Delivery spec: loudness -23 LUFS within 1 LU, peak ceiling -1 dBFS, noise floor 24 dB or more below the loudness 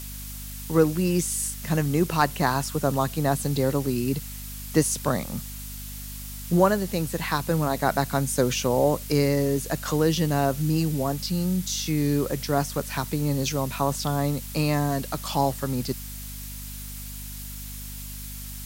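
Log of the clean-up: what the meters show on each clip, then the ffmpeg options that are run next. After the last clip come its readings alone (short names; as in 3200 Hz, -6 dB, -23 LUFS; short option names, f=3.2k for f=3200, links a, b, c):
hum 50 Hz; harmonics up to 250 Hz; hum level -36 dBFS; noise floor -37 dBFS; noise floor target -49 dBFS; loudness -25.0 LUFS; peak -6.0 dBFS; loudness target -23.0 LUFS
-> -af "bandreject=f=50:t=h:w=6,bandreject=f=100:t=h:w=6,bandreject=f=150:t=h:w=6,bandreject=f=200:t=h:w=6,bandreject=f=250:t=h:w=6"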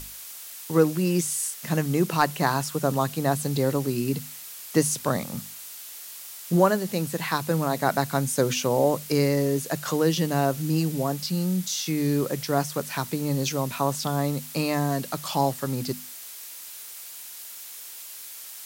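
hum none; noise floor -41 dBFS; noise floor target -50 dBFS
-> -af "afftdn=nr=9:nf=-41"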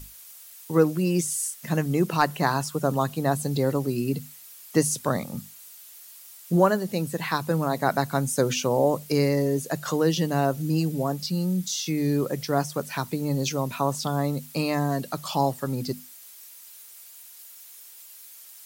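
noise floor -47 dBFS; noise floor target -50 dBFS
-> -af "afftdn=nr=6:nf=-47"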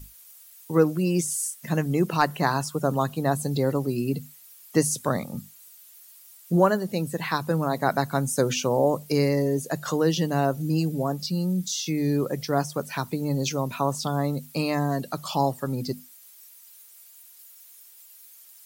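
noise floor -51 dBFS; loudness -25.5 LUFS; peak -6.5 dBFS; loudness target -23.0 LUFS
-> -af "volume=2.5dB"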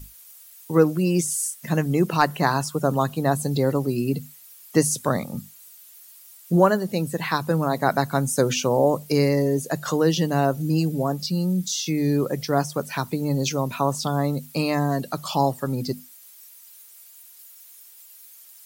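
loudness -23.0 LUFS; peak -4.0 dBFS; noise floor -48 dBFS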